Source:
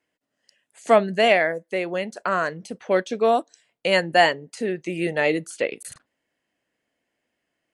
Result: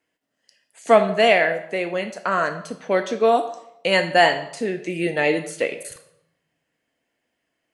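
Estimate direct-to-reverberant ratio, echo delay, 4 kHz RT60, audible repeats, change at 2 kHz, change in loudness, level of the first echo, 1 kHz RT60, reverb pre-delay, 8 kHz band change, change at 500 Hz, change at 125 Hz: 6.0 dB, none, 0.60 s, none, +2.0 dB, +1.5 dB, none, 0.75 s, 4 ms, +2.0 dB, +1.5 dB, +1.5 dB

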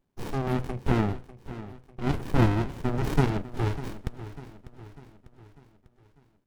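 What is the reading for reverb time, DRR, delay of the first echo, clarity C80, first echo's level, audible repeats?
none, none, 0.597 s, none, -15.0 dB, 4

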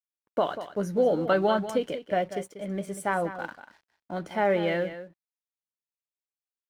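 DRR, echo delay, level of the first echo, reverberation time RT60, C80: none, 0.19 s, -12.0 dB, none, none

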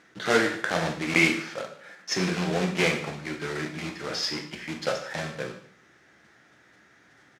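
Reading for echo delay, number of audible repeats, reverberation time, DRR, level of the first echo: 0.146 s, 1, 0.55 s, 2.5 dB, -19.0 dB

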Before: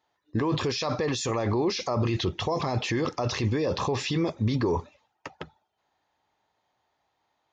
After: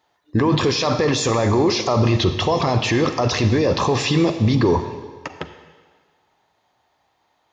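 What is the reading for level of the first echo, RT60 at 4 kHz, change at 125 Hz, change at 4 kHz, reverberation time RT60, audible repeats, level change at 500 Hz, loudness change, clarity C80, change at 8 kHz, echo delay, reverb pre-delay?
none, 1.5 s, +9.0 dB, +9.0 dB, 1.6 s, none, +9.0 dB, +9.0 dB, 10.5 dB, +9.0 dB, none, 37 ms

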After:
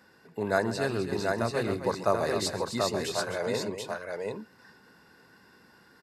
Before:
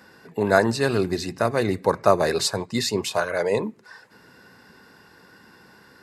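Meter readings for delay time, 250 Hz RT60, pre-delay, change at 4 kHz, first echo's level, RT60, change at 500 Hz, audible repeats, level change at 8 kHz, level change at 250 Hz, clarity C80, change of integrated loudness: 0.136 s, none, none, -6.5 dB, -16.5 dB, none, -6.5 dB, 3, -6.5 dB, -6.5 dB, none, -7.0 dB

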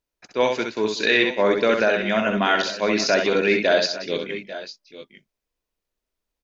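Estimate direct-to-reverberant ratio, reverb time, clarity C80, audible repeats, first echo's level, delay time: none, none, none, 3, -5.0 dB, 65 ms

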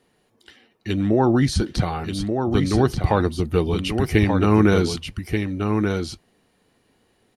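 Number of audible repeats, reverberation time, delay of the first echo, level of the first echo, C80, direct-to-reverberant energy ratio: 1, none, 1.183 s, -5.5 dB, none, none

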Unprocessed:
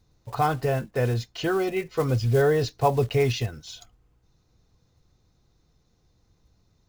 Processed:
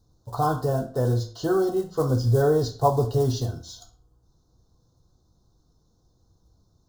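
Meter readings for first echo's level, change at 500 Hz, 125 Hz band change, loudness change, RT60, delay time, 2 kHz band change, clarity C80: none, +0.5 dB, +1.5 dB, +1.0 dB, 0.45 s, none, -8.5 dB, 15.5 dB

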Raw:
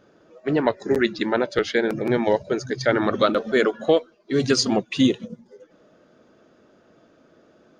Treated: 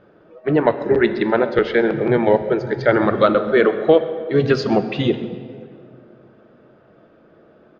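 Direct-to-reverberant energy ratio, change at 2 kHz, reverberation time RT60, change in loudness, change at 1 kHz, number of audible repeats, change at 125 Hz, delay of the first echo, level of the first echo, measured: 10.5 dB, +3.5 dB, 2.3 s, +4.5 dB, +4.5 dB, 1, +6.0 dB, 0.131 s, -19.0 dB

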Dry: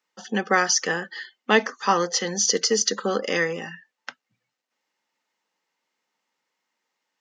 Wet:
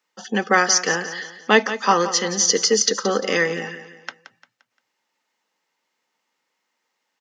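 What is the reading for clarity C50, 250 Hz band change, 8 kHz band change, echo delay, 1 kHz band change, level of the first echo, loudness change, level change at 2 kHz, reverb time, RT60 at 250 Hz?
none, +3.0 dB, +4.0 dB, 0.174 s, +3.5 dB, -12.5 dB, +3.5 dB, +4.0 dB, none, none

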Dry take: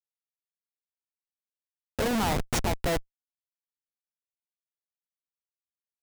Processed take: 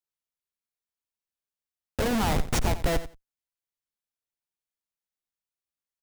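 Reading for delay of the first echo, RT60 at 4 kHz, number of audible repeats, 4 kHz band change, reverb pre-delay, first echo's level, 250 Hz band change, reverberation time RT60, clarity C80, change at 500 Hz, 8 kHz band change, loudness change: 88 ms, none, 2, 0.0 dB, none, -14.0 dB, +1.0 dB, none, none, +0.5 dB, 0.0 dB, +1.0 dB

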